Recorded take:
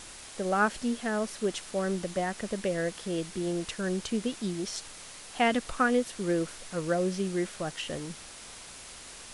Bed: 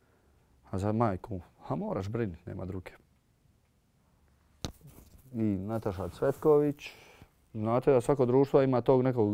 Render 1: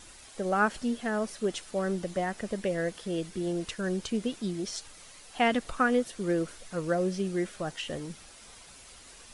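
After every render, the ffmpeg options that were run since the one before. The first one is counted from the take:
-af "afftdn=nr=8:nf=-47"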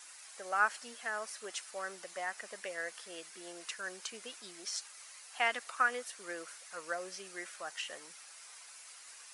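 -af "highpass=1100,equalizer=f=3400:w=2.4:g=-6"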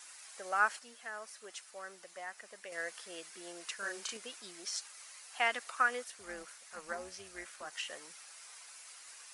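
-filter_complex "[0:a]asettb=1/sr,asplit=3[s0][s1][s2];[s0]atrim=end=3.774[s3];[s1]atrim=start=3.77:end=4.17,asetpts=PTS-STARTPTS,afade=t=in:d=0.004:c=qsin,afade=t=out:st=0.396:d=0.004:c=qsin,asplit=2[s4][s5];[s5]adelay=35,volume=0.794[s6];[s4][s6]amix=inputs=2:normalize=0,atrim=end_sample=17640[s7];[s2]atrim=start=4.166[s8];[s3][s7]acrossfade=d=0.004:c1=hsin:c2=qsin[s9];[s9][s8]acrossfade=d=0.004:c1=qsin:c2=hsin,asettb=1/sr,asplit=3[s10][s11][s12];[s10]atrim=end=6.044[s13];[s11]atrim=start=6.04:end=7.73,asetpts=PTS-STARTPTS,afade=t=in:d=0.004:c=qsin,afade=t=out:st=1.686:d=0.004:c=qsin,tremolo=f=300:d=0.621[s14];[s12]atrim=start=7.726[s15];[s13][s14]acrossfade=d=0.004:c1=hsin:c2=qsin[s16];[s16][s15]acrossfade=d=0.004:c1=qsin:c2=hsin,asplit=3[s17][s18][s19];[s17]atrim=end=0.792[s20];[s18]atrim=start=0.788:end=2.722,asetpts=PTS-STARTPTS,volume=0.501[s21];[s19]atrim=start=2.718[s22];[s20][s21]acrossfade=d=0.004:c1=hsin:c2=hsin[s23];[s23][s22]acrossfade=d=0.004:c1=hsin:c2=hsin"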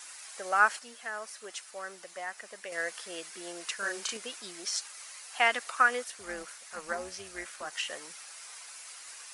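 -af "volume=2"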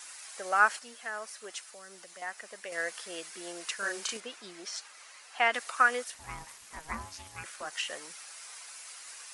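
-filter_complex "[0:a]asettb=1/sr,asplit=3[s0][s1][s2];[s0]atrim=end=1.644[s3];[s1]atrim=start=1.64:end=2.22,asetpts=PTS-STARTPTS,afade=t=in:d=0.004:c=qsin,afade=t=out:st=0.576:d=0.004:c=qsin,acrossover=split=270|3000[s4][s5][s6];[s5]acompressor=threshold=0.00355:ratio=6:attack=3.2:release=140:knee=2.83:detection=peak[s7];[s4][s7][s6]amix=inputs=3:normalize=0[s8];[s2]atrim=start=2.216[s9];[s3][s8]acrossfade=d=0.004:c1=hsin:c2=qsin[s10];[s10][s9]acrossfade=d=0.004:c1=qsin:c2=hsin,asettb=1/sr,asplit=3[s11][s12][s13];[s11]atrim=end=4.204[s14];[s12]atrim=start=4.2:end=5.54,asetpts=PTS-STARTPTS,afade=t=in:d=0.004:c=qsin,afade=t=out:st=1.336:d=0.004:c=qsin,lowpass=f=3000:p=1[s15];[s13]atrim=start=5.536[s16];[s14][s15]acrossfade=d=0.004:c1=hsin:c2=qsin[s17];[s17][s16]acrossfade=d=0.004:c1=qsin:c2=hsin,asettb=1/sr,asplit=3[s18][s19][s20];[s18]atrim=end=6.144[s21];[s19]atrim=start=6.14:end=7.44,asetpts=PTS-STARTPTS,afade=t=in:d=0.004:c=qsin,afade=t=out:st=1.296:d=0.004:c=qsin,aeval=exprs='val(0)*sin(2*PI*470*n/s)':c=same[s22];[s20]atrim=start=7.436[s23];[s21][s22]acrossfade=d=0.004:c1=hsin:c2=qsin[s24];[s24][s23]acrossfade=d=0.004:c1=qsin:c2=hsin"

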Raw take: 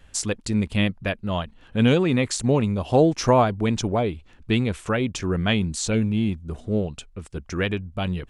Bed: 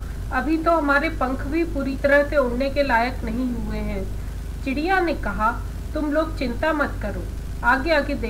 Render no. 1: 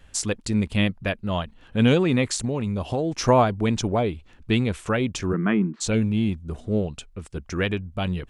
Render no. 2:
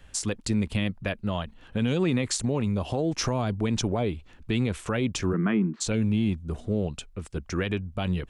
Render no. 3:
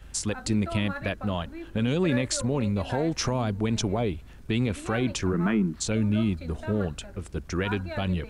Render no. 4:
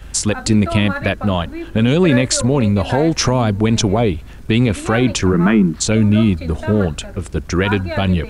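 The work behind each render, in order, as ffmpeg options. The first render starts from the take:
-filter_complex "[0:a]asettb=1/sr,asplit=3[s0][s1][s2];[s0]atrim=end=2.374[s3];[s1]atrim=start=2.37:end=3.24,asetpts=PTS-STARTPTS,afade=t=in:d=0.004:c=qsin,afade=t=out:st=0.866:d=0.004:c=qsin,acompressor=threshold=0.0891:ratio=6:attack=3.2:release=140:knee=1:detection=peak[s4];[s2]atrim=start=3.236[s5];[s3][s4]acrossfade=d=0.004:c1=hsin:c2=qsin[s6];[s6][s5]acrossfade=d=0.004:c1=qsin:c2=hsin,asplit=3[s7][s8][s9];[s7]afade=t=out:st=5.32:d=0.02[s10];[s8]highpass=f=180:w=0.5412,highpass=f=180:w=1.3066,equalizer=f=190:t=q:w=4:g=6,equalizer=f=340:t=q:w=4:g=9,equalizer=f=540:t=q:w=4:g=-7,equalizer=f=760:t=q:w=4:g=-5,equalizer=f=1200:t=q:w=4:g=5,lowpass=f=2000:w=0.5412,lowpass=f=2000:w=1.3066,afade=t=in:st=5.32:d=0.02,afade=t=out:st=5.8:d=0.02[s11];[s9]afade=t=in:st=5.8:d=0.02[s12];[s10][s11][s12]amix=inputs=3:normalize=0"
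-filter_complex "[0:a]acrossover=split=280|3000[s0][s1][s2];[s1]acompressor=threshold=0.0794:ratio=6[s3];[s0][s3][s2]amix=inputs=3:normalize=0,alimiter=limit=0.158:level=0:latency=1:release=77"
-filter_complex "[1:a]volume=0.126[s0];[0:a][s0]amix=inputs=2:normalize=0"
-af "volume=3.76"

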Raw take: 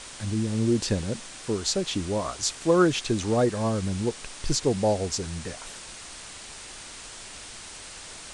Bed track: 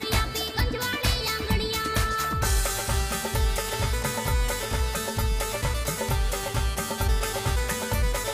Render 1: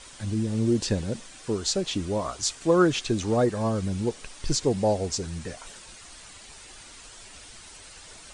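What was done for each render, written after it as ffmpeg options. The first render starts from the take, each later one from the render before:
-af "afftdn=nr=8:nf=-43"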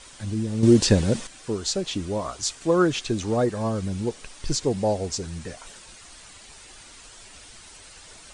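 -filter_complex "[0:a]asplit=3[s0][s1][s2];[s0]atrim=end=0.632[s3];[s1]atrim=start=0.628:end=1.272,asetpts=PTS-STARTPTS,volume=2.51[s4];[s2]atrim=start=1.268[s5];[s3][s4]acrossfade=d=0.004:c1=hsin:c2=hsin[s6];[s6][s5]acrossfade=d=0.004:c1=hsin:c2=hsin"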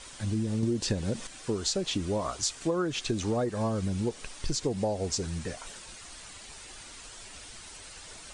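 -af "acompressor=threshold=0.0562:ratio=12"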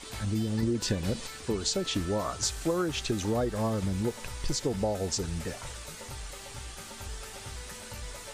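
-filter_complex "[1:a]volume=0.141[s0];[0:a][s0]amix=inputs=2:normalize=0"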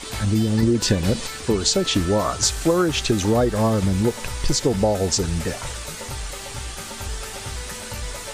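-af "volume=3.16"

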